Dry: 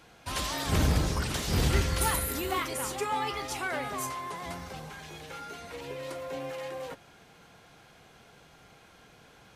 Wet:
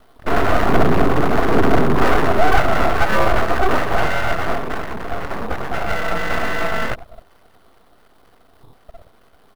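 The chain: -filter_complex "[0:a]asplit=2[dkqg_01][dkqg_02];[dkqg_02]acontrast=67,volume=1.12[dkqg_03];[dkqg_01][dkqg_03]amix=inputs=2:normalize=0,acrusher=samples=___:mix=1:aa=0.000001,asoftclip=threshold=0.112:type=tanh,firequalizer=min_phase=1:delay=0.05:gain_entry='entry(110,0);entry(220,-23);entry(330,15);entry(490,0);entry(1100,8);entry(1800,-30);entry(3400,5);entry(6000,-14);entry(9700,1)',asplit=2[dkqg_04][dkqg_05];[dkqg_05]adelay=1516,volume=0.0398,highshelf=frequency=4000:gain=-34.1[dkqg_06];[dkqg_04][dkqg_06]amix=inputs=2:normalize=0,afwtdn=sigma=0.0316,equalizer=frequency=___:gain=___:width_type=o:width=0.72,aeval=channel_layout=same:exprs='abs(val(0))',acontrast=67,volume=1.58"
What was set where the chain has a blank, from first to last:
29, 560, -8.5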